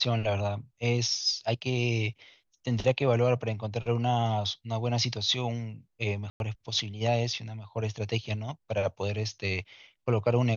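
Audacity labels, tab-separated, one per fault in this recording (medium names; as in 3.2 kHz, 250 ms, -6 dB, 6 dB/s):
6.300000	6.400000	dropout 101 ms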